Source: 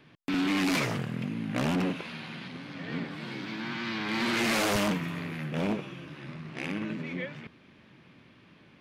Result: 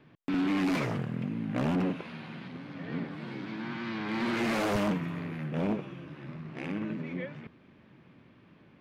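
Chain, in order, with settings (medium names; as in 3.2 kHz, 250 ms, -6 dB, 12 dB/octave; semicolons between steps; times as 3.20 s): treble shelf 2.3 kHz -12 dB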